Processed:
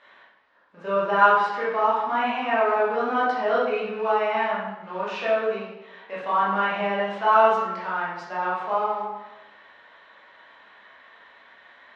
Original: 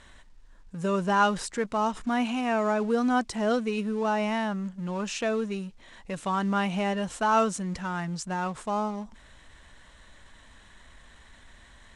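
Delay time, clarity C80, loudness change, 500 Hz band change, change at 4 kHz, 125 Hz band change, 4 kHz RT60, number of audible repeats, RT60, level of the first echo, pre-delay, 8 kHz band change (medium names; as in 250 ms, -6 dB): no echo, 3.5 dB, +4.5 dB, +5.5 dB, +0.5 dB, no reading, 0.70 s, no echo, 1.0 s, no echo, 14 ms, under -15 dB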